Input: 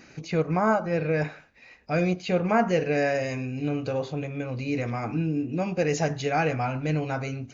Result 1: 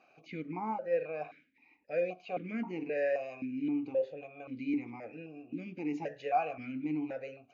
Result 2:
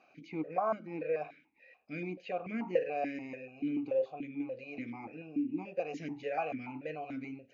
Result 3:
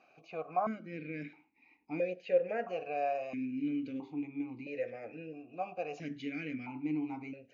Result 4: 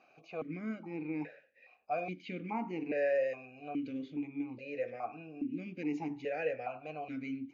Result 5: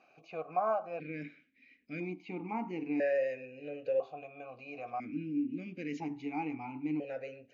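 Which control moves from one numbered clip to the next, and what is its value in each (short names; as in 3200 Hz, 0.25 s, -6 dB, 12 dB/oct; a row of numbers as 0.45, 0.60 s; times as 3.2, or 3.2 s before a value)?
vowel sequencer, rate: 3.8, 6.9, 1.5, 2.4, 1 Hz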